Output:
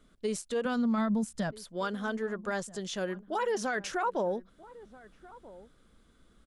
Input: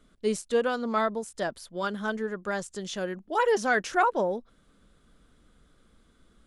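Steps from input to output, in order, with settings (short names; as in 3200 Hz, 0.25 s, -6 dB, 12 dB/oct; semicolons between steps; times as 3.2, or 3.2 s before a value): 0.65–1.51 resonant low shelf 270 Hz +7.5 dB, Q 3; limiter -21.5 dBFS, peak gain reduction 9.5 dB; outdoor echo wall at 220 m, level -19 dB; gain -1.5 dB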